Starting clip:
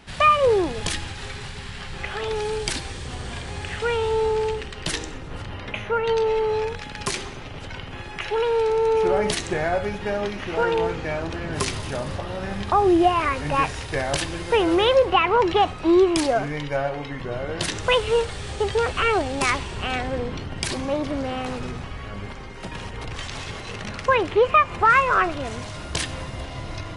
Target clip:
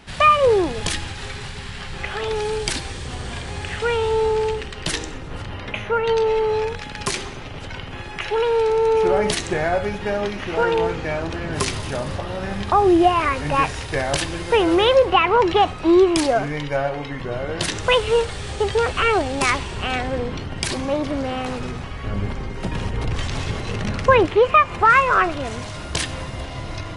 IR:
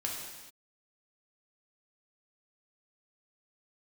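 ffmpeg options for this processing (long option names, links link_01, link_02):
-filter_complex "[0:a]asettb=1/sr,asplit=3[link_01][link_02][link_03];[link_01]atrim=end=22.044[link_04];[link_02]atrim=start=22.04:end=24.26,asetpts=PTS-STARTPTS,afade=type=in:duration=0.004:curve=qsin,afade=type=out:start_time=2.216:duration=0.004:curve=qsin,lowshelf=frequency=470:gain=8.5[link_05];[link_03]atrim=start=24.256[link_06];[link_04][link_05]acrossfade=duration=0.004:curve1=hsin:curve2=qsin[link_07];[link_07][link_06]acrossfade=duration=0.004:curve1=qsin:curve2=hsin,volume=2.5dB"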